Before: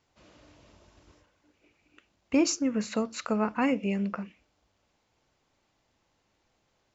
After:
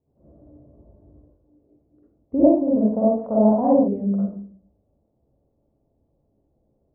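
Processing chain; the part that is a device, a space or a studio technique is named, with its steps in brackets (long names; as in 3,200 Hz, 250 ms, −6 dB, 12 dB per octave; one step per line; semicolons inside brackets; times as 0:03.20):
next room (low-pass filter 590 Hz 24 dB per octave; convolution reverb RT60 0.50 s, pre-delay 43 ms, DRR −7.5 dB)
0:02.44–0:03.88: flat-topped bell 780 Hz +13.5 dB 1.1 octaves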